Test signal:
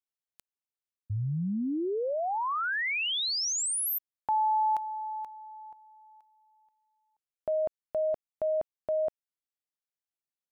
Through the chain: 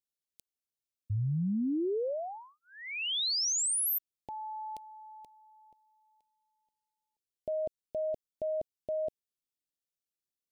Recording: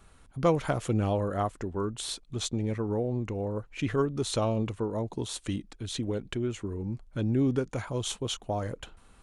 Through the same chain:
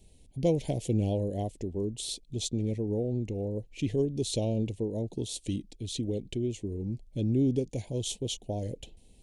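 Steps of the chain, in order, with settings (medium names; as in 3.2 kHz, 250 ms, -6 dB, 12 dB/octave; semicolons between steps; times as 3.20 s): Butterworth band-stop 1.3 kHz, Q 0.54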